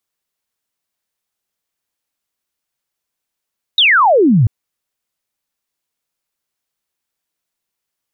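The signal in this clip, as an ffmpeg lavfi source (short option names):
-f lavfi -i "aevalsrc='0.447*clip(t/0.002,0,1)*clip((0.69-t)/0.002,0,1)*sin(2*PI*3900*0.69/log(100/3900)*(exp(log(100/3900)*t/0.69)-1))':d=0.69:s=44100"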